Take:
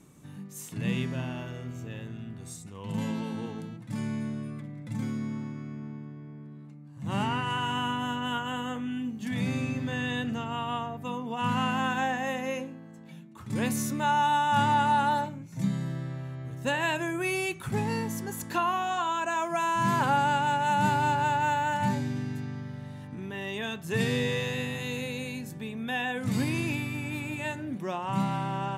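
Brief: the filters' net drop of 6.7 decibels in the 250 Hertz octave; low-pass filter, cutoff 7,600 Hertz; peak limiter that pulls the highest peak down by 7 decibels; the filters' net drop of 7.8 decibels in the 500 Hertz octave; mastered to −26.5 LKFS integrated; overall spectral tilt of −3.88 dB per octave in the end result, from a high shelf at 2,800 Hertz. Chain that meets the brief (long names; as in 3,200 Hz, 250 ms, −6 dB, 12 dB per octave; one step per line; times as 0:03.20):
low-pass filter 7,600 Hz
parametric band 250 Hz −7 dB
parametric band 500 Hz −8 dB
high-shelf EQ 2,800 Hz −4.5 dB
level +8 dB
brickwall limiter −15 dBFS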